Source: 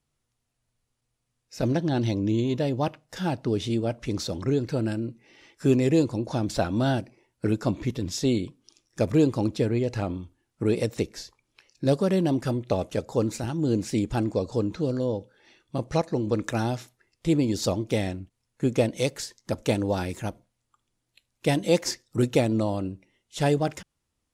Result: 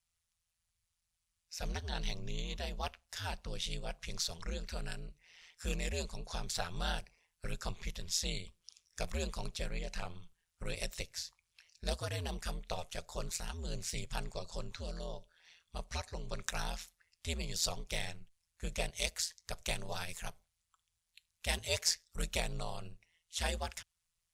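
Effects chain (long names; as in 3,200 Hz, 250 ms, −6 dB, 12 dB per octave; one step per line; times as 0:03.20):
ring modulation 84 Hz
guitar amp tone stack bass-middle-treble 10-0-10
level +2.5 dB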